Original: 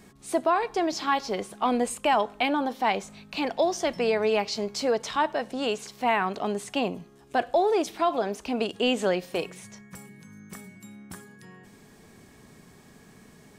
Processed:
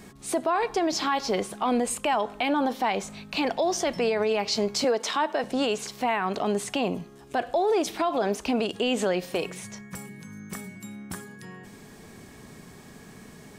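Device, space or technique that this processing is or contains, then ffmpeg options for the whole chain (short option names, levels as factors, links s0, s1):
stacked limiters: -filter_complex "[0:a]asettb=1/sr,asplit=3[s0][s1][s2];[s0]atrim=end=4.844[s3];[s1]atrim=start=4.84:end=5.44,asetpts=PTS-STARTPTS,afade=t=in:d=0.004:c=qsin,afade=t=out:st=0.596:d=0.004:c=qsin,highpass=f=220:w=0.5412,highpass=f=220:w=1.3066[s4];[s2]atrim=start=5.436[s5];[s3][s4]acrossfade=d=0.004:c1=hsin:c2=qsin[s6];[s6][s5]acrossfade=d=0.004:c1=qsin:c2=hsin,alimiter=limit=0.133:level=0:latency=1:release=161,alimiter=limit=0.0794:level=0:latency=1:release=57,volume=1.88"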